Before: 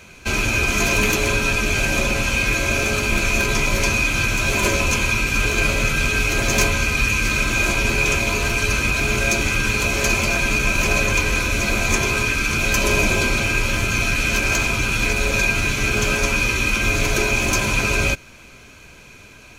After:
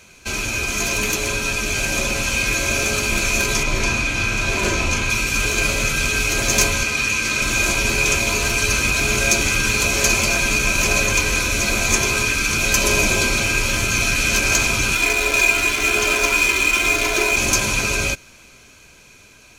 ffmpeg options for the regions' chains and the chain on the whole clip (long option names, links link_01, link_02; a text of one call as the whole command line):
ffmpeg -i in.wav -filter_complex "[0:a]asettb=1/sr,asplit=3[link_01][link_02][link_03];[link_01]atrim=end=3.634[link_04];[link_02]atrim=start=3.63:end=5.1,asetpts=PTS-STARTPTS,afade=type=in:duration=0.004:curve=qsin,afade=type=out:start_time=1.466:duration=0.004:curve=qsin,aemphasis=mode=reproduction:type=50kf,asplit=2[link_05][link_06];[link_06]adelay=37,volume=-5dB[link_07];[link_05][link_07]amix=inputs=2:normalize=0,atrim=end_sample=64827[link_08];[link_03]atrim=start=5.096[link_09];[link_04][link_08]acrossfade=duration=0.004:curve1=hsin:curve2=qsin[link_10];[link_10][link_09]acrossfade=duration=0.004:curve1=qsin:curve2=hsin,asettb=1/sr,asplit=3[link_11][link_12][link_13];[link_11]atrim=end=6.834[link_14];[link_12]atrim=start=6.83:end=7.42,asetpts=PTS-STARTPTS,afade=type=in:duration=0.004:curve=qsin,afade=type=out:start_time=0.586:duration=0.004:curve=qsin,highpass=frequency=160:poles=1,highshelf=frequency=11000:gain=-10[link_15];[link_13]atrim=start=7.416[link_16];[link_14][link_15]acrossfade=duration=0.004:curve1=hsin:curve2=qsin[link_17];[link_17][link_16]acrossfade=duration=0.004:curve1=qsin:curve2=hsin,asettb=1/sr,asplit=3[link_18][link_19][link_20];[link_18]atrim=end=14.954[link_21];[link_19]atrim=start=14.95:end=17.37,asetpts=PTS-STARTPTS,afade=type=in:duration=0.004:curve=qsin,afade=type=out:start_time=2.416:duration=0.004:curve=qsin,bass=frequency=250:gain=-11,treble=frequency=4000:gain=-6,aecho=1:1:2.9:0.58,atrim=end_sample=106722,adynamicsmooth=sensitivity=7:basefreq=940[link_22];[link_20]atrim=start=17.366[link_23];[link_21][link_22]acrossfade=duration=0.004:curve1=hsin:curve2=qsin[link_24];[link_24][link_23]acrossfade=duration=0.004:curve1=qsin:curve2=hsin,highshelf=frequency=12000:gain=-6,dynaudnorm=framelen=130:gausssize=31:maxgain=11.5dB,bass=frequency=250:gain=-2,treble=frequency=4000:gain=8,volume=-4.5dB" out.wav